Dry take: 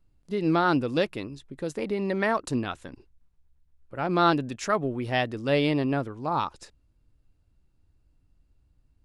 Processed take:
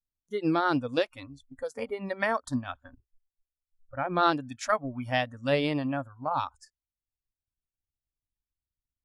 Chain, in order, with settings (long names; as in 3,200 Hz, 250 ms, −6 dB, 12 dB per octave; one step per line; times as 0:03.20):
0:02.66–0:04.23: low-pass filter 3,300 Hz
noise reduction from a noise print of the clip's start 27 dB
transient designer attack +4 dB, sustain −4 dB
level −3 dB